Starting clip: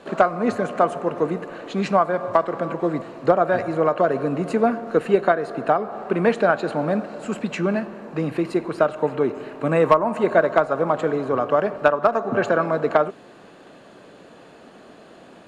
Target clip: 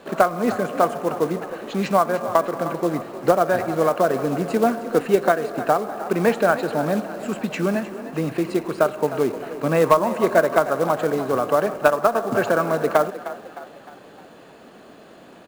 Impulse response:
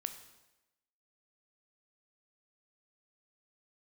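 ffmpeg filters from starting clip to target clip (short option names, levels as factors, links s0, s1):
-filter_complex "[0:a]acrusher=bits=5:mode=log:mix=0:aa=0.000001,asplit=6[s0][s1][s2][s3][s4][s5];[s1]adelay=307,afreqshift=37,volume=0.2[s6];[s2]adelay=614,afreqshift=74,volume=0.0955[s7];[s3]adelay=921,afreqshift=111,volume=0.0457[s8];[s4]adelay=1228,afreqshift=148,volume=0.0221[s9];[s5]adelay=1535,afreqshift=185,volume=0.0106[s10];[s0][s6][s7][s8][s9][s10]amix=inputs=6:normalize=0"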